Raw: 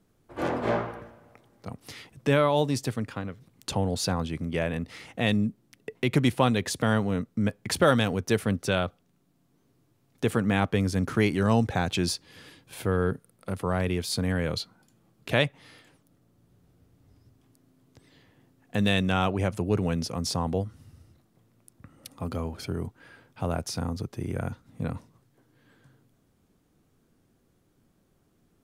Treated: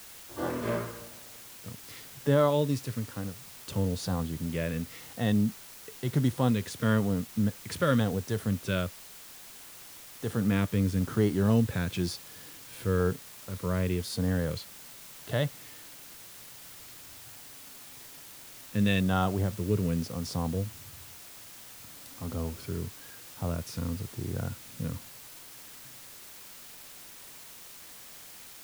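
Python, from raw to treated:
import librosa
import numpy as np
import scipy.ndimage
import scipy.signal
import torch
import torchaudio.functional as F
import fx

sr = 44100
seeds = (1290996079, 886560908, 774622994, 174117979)

y = fx.hpss(x, sr, part='percussive', gain_db=-10)
y = fx.filter_lfo_notch(y, sr, shape='square', hz=1.0, low_hz=770.0, high_hz=2400.0, q=2.2)
y = fx.quant_dither(y, sr, seeds[0], bits=8, dither='triangular')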